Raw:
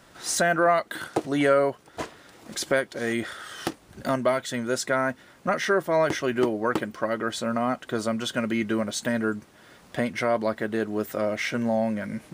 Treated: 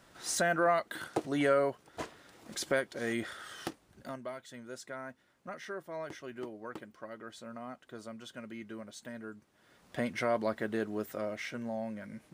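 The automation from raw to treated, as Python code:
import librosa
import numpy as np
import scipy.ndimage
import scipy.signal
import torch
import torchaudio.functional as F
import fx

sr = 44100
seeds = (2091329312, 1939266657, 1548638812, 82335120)

y = fx.gain(x, sr, db=fx.line((3.52, -7.0), (4.22, -18.5), (9.37, -18.5), (10.07, -6.5), (10.74, -6.5), (11.61, -13.0)))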